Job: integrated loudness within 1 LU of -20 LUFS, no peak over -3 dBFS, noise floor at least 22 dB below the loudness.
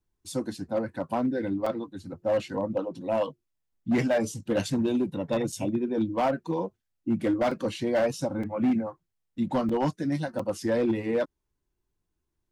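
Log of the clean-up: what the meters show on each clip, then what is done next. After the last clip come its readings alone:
clipped 1.8%; flat tops at -19.5 dBFS; dropouts 6; longest dropout 4.5 ms; loudness -28.5 LUFS; peak -19.5 dBFS; loudness target -20.0 LUFS
-> clip repair -19.5 dBFS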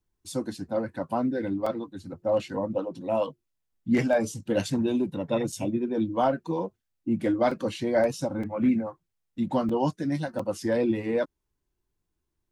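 clipped 0.0%; dropouts 6; longest dropout 4.5 ms
-> interpolate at 1.66/5.52/7.51/8.43/9.69/10.39, 4.5 ms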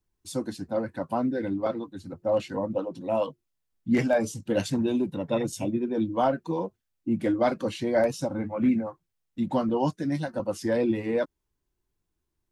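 dropouts 0; loudness -28.0 LUFS; peak -12.0 dBFS; loudness target -20.0 LUFS
-> gain +8 dB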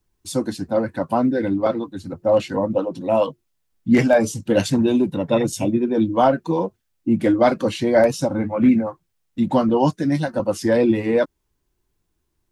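loudness -20.0 LUFS; peak -4.0 dBFS; noise floor -73 dBFS

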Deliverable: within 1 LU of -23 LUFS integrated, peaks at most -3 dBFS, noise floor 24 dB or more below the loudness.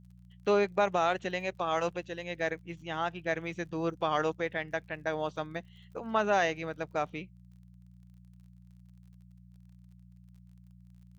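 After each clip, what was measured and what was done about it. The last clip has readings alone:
ticks 34/s; hum 60 Hz; harmonics up to 180 Hz; hum level -52 dBFS; loudness -32.5 LUFS; peak -15.0 dBFS; loudness target -23.0 LUFS
-> de-click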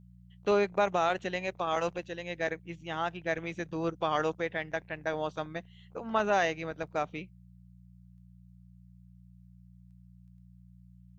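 ticks 0/s; hum 60 Hz; harmonics up to 180 Hz; hum level -52 dBFS
-> de-hum 60 Hz, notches 3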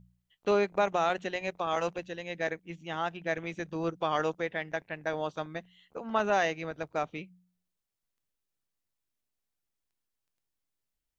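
hum none; loudness -32.0 LUFS; peak -14.5 dBFS; loudness target -23.0 LUFS
-> gain +9 dB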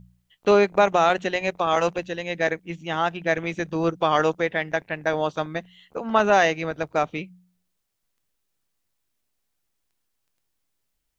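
loudness -23.0 LUFS; peak -5.5 dBFS; noise floor -76 dBFS

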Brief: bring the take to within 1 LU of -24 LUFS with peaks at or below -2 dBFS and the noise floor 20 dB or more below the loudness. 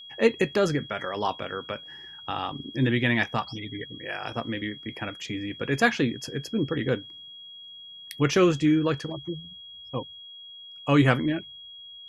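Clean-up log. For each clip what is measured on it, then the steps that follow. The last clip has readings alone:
steady tone 3300 Hz; tone level -42 dBFS; loudness -27.0 LUFS; peak -3.5 dBFS; loudness target -24.0 LUFS
-> notch 3300 Hz, Q 30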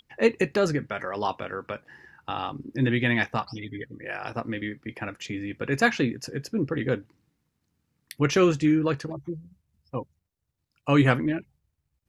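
steady tone none; loudness -27.0 LUFS; peak -3.5 dBFS; loudness target -24.0 LUFS
-> gain +3 dB; limiter -2 dBFS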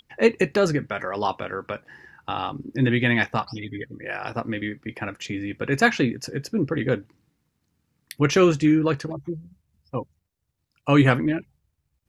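loudness -24.0 LUFS; peak -2.0 dBFS; noise floor -76 dBFS

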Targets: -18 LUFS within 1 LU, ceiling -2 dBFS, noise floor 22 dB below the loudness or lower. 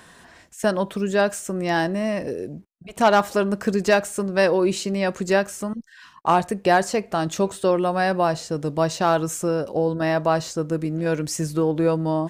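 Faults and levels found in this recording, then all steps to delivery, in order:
loudness -22.5 LUFS; peak -5.5 dBFS; loudness target -18.0 LUFS
-> gain +4.5 dB; limiter -2 dBFS

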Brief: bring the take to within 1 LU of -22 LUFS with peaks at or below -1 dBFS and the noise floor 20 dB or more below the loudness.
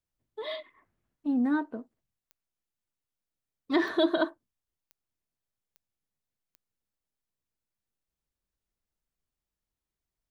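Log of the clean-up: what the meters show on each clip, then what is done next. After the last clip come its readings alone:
clicks 5; loudness -29.5 LUFS; peak -13.5 dBFS; loudness target -22.0 LUFS
-> de-click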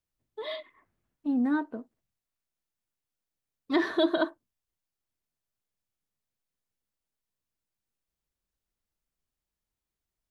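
clicks 0; loudness -29.5 LUFS; peak -13.5 dBFS; loudness target -22.0 LUFS
-> gain +7.5 dB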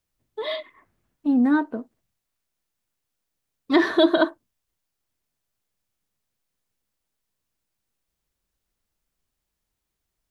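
loudness -22.0 LUFS; peak -6.0 dBFS; noise floor -82 dBFS

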